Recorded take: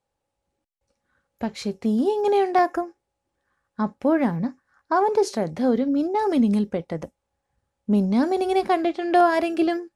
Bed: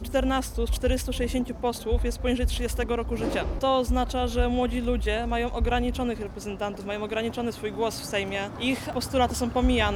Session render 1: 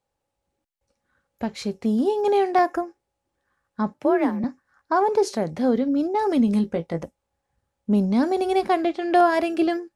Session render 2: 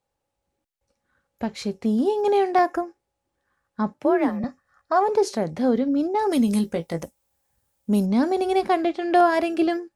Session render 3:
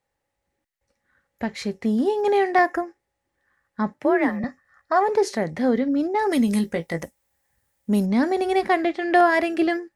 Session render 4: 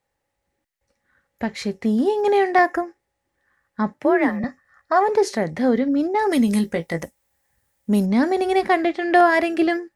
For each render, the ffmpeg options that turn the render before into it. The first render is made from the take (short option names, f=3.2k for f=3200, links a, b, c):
-filter_complex "[0:a]asettb=1/sr,asplit=3[a][b][c];[a]atrim=end=3.944[d];[b]atrim=start=3.94:end=4.44,asetpts=PTS-STARTPTS,afade=t=in:d=0.004:c=qsin,afade=t=out:st=0.496:d=0.004:c=qsin,afreqshift=42[e];[c]atrim=start=4.436[f];[d][e]acrossfade=d=0.004:c1=hsin:c2=qsin[g];[g][f]acrossfade=d=0.004:c1=qsin:c2=hsin,asettb=1/sr,asplit=3[h][i][j];[h]atrim=end=6.464[k];[i]atrim=start=6.46:end=7.03,asetpts=PTS-STARTPTS,afade=t=in:d=0.004:c=qsin,afade=t=out:st=0.566:d=0.004:c=qsin,asplit=2[l][m];[m]adelay=18,volume=-8dB[n];[l][n]amix=inputs=2:normalize=0,atrim=end_sample=25137[o];[j]atrim=start=7.026[p];[k][o]acrossfade=d=0.004:c1=hsin:c2=qsin[q];[q][p]acrossfade=d=0.004:c1=qsin:c2=hsin"
-filter_complex "[0:a]asettb=1/sr,asplit=3[a][b][c];[a]atrim=end=4.284[d];[b]atrim=start=4.28:end=5.1,asetpts=PTS-STARTPTS,afade=t=in:d=0.004:c=qsin,afade=t=out:st=0.816:d=0.004:c=qsin,aecho=1:1:1.6:0.55,atrim=end_sample=36162[e];[c]atrim=start=5.096[f];[d][e]acrossfade=d=0.004:c1=hsin:c2=qsin[g];[g][f]acrossfade=d=0.004:c1=qsin:c2=hsin,asplit=3[h][i][j];[h]afade=t=out:st=6.31:d=0.02[k];[i]aemphasis=mode=production:type=75fm,afade=t=in:st=6.31:d=0.02,afade=t=out:st=8.05:d=0.02[l];[j]afade=t=in:st=8.05:d=0.02[m];[k][l][m]amix=inputs=3:normalize=0"
-af "equalizer=f=1.9k:t=o:w=0.37:g=11.5"
-af "volume=2dB"